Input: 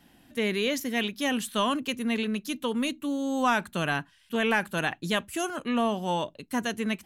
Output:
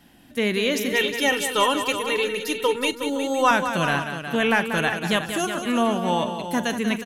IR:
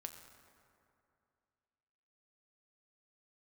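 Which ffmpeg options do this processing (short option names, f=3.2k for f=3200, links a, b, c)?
-filter_complex "[0:a]asettb=1/sr,asplit=3[a][b][c];[a]atrim=end=0.924[d];[b]atrim=start=0.92:end=3.51,asetpts=PTS-STARTPTS,afade=t=in:d=0.004:c=qsin,afade=t=out:st=2.586:d=0.004:c=qsin,aecho=1:1:2.2:0.91,atrim=end_sample=114219[e];[c]atrim=start=3.506[f];[d][e]acrossfade=d=0.004:c1=hsin:c2=qsin[g];[g][f]acrossfade=d=0.004:c1=qsin:c2=hsin,aecho=1:1:43|187|364|514:0.141|0.355|0.316|0.178,volume=4.5dB"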